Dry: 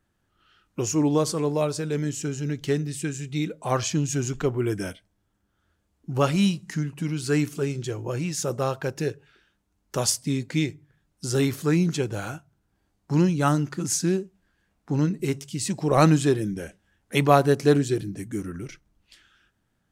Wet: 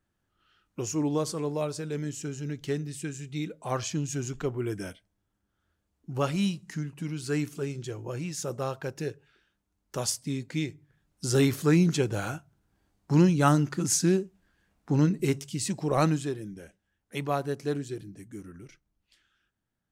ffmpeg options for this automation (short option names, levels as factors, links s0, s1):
-af "afade=t=in:st=10.66:d=0.66:silence=0.501187,afade=t=out:st=15.27:d=1.05:silence=0.266073"